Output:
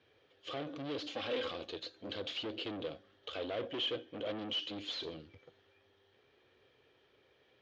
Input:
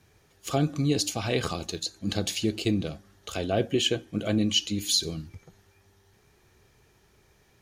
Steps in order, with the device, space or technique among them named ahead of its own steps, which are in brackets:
0:01.10–0:01.51: comb filter 3.7 ms, depth 80%
guitar amplifier (tube saturation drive 34 dB, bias 0.55; bass and treble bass −7 dB, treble −2 dB; loudspeaker in its box 96–4,200 Hz, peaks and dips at 180 Hz −10 dB, 280 Hz +4 dB, 510 Hz +9 dB, 890 Hz −4 dB, 3,200 Hz +8 dB)
level −3 dB

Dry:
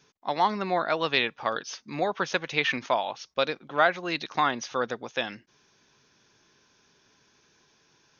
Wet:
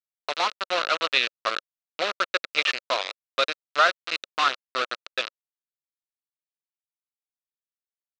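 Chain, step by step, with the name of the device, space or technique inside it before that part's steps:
hand-held game console (bit reduction 4 bits; loudspeaker in its box 430–5,500 Hz, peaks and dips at 550 Hz +4 dB, 850 Hz −7 dB, 1,300 Hz +9 dB, 2,700 Hz +6 dB, 4,000 Hz +7 dB)
level −1.5 dB

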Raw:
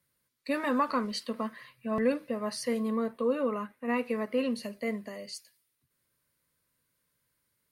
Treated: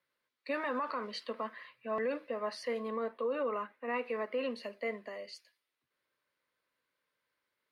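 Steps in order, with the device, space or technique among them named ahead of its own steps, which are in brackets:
DJ mixer with the lows and highs turned down (three-way crossover with the lows and the highs turned down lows −19 dB, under 330 Hz, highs −19 dB, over 4,200 Hz; brickwall limiter −26.5 dBFS, peak gain reduction 9.5 dB)

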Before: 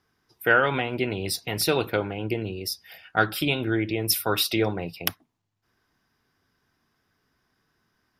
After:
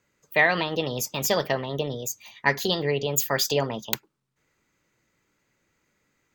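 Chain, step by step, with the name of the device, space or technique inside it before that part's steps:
nightcore (speed change +29%)

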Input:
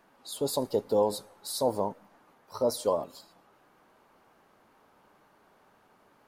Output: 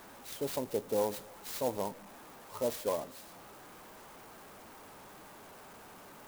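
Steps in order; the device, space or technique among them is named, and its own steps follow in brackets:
early CD player with a faulty converter (converter with a step at zero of −41 dBFS; converter with an unsteady clock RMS 0.055 ms)
level −6.5 dB

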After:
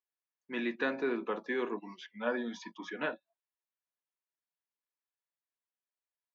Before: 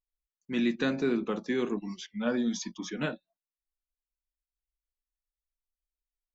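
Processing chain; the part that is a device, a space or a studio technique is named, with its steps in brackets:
tin-can telephone (band-pass filter 410–2,600 Hz; hollow resonant body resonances 970/1,700 Hz, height 8 dB)

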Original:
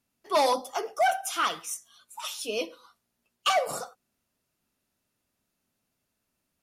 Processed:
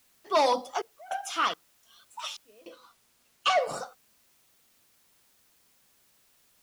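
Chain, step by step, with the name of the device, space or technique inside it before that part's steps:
worn cassette (low-pass filter 6,300 Hz 12 dB per octave; tape wow and flutter; tape dropouts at 0:00.82/0:01.54/0:02.37, 287 ms −26 dB; white noise bed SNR 32 dB)
0:02.69–0:03.61: high-shelf EQ 12,000 Hz −5.5 dB

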